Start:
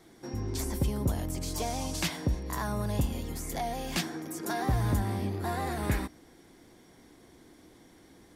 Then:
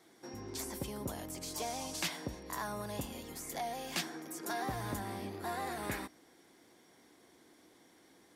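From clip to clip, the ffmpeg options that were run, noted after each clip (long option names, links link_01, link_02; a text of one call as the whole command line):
ffmpeg -i in.wav -af "highpass=frequency=400:poles=1,volume=-3.5dB" out.wav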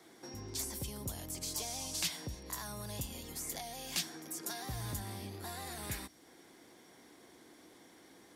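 ffmpeg -i in.wav -filter_complex "[0:a]acrossover=split=140|3000[link_01][link_02][link_03];[link_02]acompressor=threshold=-55dB:ratio=2.5[link_04];[link_01][link_04][link_03]amix=inputs=3:normalize=0,volume=4dB" out.wav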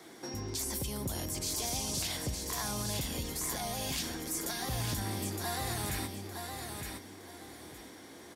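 ffmpeg -i in.wav -af "alimiter=level_in=9dB:limit=-24dB:level=0:latency=1:release=38,volume=-9dB,aecho=1:1:914|1828|2742:0.562|0.146|0.038,volume=7dB" out.wav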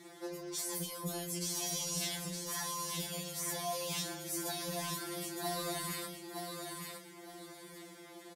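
ffmpeg -i in.wav -filter_complex "[0:a]asplit=2[link_01][link_02];[link_02]adelay=33,volume=-11dB[link_03];[link_01][link_03]amix=inputs=2:normalize=0,afftfilt=real='re*2.83*eq(mod(b,8),0)':imag='im*2.83*eq(mod(b,8),0)':win_size=2048:overlap=0.75" out.wav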